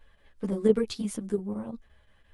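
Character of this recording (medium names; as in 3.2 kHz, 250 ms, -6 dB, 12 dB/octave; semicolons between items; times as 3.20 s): chopped level 5.8 Hz, depth 60%, duty 85%; a shimmering, thickened sound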